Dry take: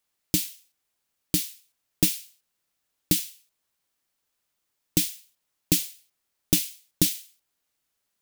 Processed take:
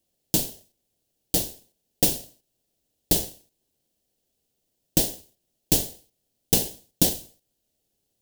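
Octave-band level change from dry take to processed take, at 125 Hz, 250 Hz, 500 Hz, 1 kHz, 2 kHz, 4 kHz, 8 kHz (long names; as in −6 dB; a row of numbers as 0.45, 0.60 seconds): +0.5, −0.5, +8.0, +13.0, −1.5, +1.0, +1.5 decibels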